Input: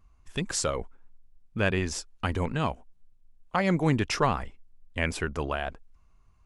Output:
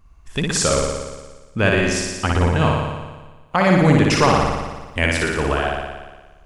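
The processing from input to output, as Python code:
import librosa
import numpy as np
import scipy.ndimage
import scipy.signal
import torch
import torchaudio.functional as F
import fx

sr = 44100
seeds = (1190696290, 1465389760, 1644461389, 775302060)

p1 = fx.high_shelf(x, sr, hz=6300.0, db=9.5, at=(4.24, 5.12))
p2 = p1 + fx.room_flutter(p1, sr, wall_m=10.0, rt60_s=1.3, dry=0)
y = F.gain(torch.from_numpy(p2), 7.5).numpy()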